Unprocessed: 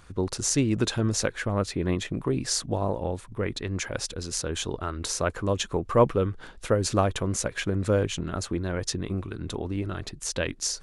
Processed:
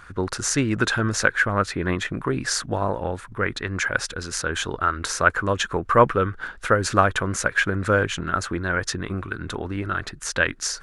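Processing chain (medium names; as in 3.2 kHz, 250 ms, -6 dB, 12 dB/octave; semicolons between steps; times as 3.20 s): peaking EQ 1.5 kHz +15 dB 1 oct; trim +1 dB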